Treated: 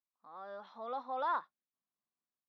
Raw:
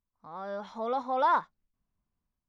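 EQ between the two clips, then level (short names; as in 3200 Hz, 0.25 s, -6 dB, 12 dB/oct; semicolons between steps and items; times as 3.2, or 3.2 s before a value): speaker cabinet 450–3900 Hz, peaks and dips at 450 Hz -7 dB, 640 Hz -5 dB, 920 Hz -7 dB, 1500 Hz -4 dB, 2200 Hz -10 dB, 3100 Hz -6 dB; -3.0 dB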